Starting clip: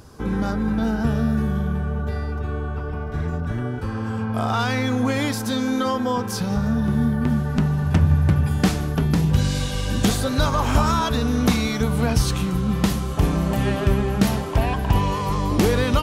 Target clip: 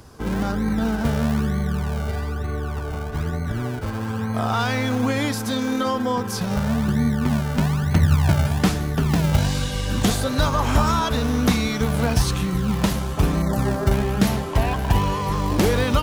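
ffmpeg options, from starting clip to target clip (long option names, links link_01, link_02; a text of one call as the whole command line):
ffmpeg -i in.wav -filter_complex "[0:a]asettb=1/sr,asplit=3[link_01][link_02][link_03];[link_01]atrim=end=13.424[link_04];[link_02]atrim=start=13.42:end=13.92,asetpts=PTS-STARTPTS,afade=type=in:duration=0.004:curve=qsin,afade=type=out:start_time=0.496:duration=0.004:curve=qsin,asuperstop=centerf=2800:order=4:qfactor=0.95[link_05];[link_03]atrim=start=13.916[link_06];[link_04][link_05]acrossfade=duration=0.004:curve1=hsin:curve2=qsin[link_07];[link_07][link_06]acrossfade=duration=0.004:curve1=qsin:curve2=hsin,acrossover=split=190[link_08][link_09];[link_08]acrusher=samples=41:mix=1:aa=0.000001:lfo=1:lforange=41:lforate=1.1[link_10];[link_10][link_09]amix=inputs=2:normalize=0" out.wav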